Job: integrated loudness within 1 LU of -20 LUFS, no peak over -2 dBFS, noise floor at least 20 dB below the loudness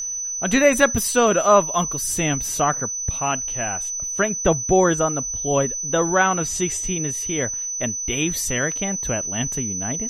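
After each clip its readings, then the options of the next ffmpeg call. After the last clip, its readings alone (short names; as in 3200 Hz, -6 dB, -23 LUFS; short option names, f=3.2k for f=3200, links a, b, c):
steady tone 6000 Hz; tone level -25 dBFS; loudness -20.5 LUFS; peak -1.5 dBFS; loudness target -20.0 LUFS
-> -af "bandreject=f=6k:w=30"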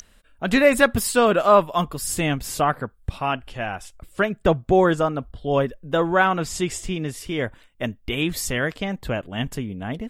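steady tone none; loudness -22.5 LUFS; peak -2.0 dBFS; loudness target -20.0 LUFS
-> -af "volume=2.5dB,alimiter=limit=-2dB:level=0:latency=1"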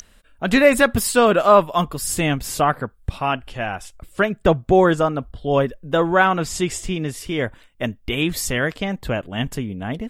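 loudness -20.0 LUFS; peak -2.0 dBFS; noise floor -53 dBFS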